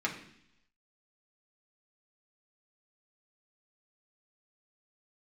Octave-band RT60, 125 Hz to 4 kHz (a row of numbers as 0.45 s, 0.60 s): 0.90 s, 0.85 s, 0.70 s, 0.70 s, 0.85 s, 0.95 s